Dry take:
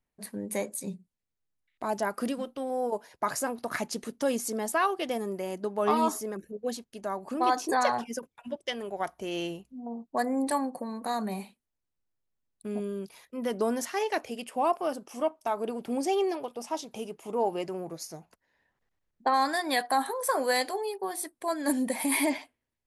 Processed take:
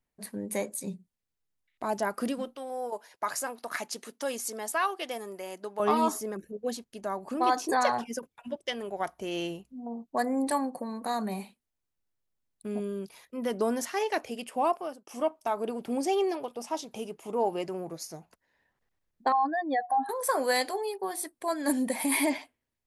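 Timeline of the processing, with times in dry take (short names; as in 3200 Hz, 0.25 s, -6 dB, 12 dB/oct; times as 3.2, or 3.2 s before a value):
2.56–5.8 HPF 750 Hz 6 dB/oct
14.66–15.07 fade out
19.32–20.09 spectral contrast raised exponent 2.7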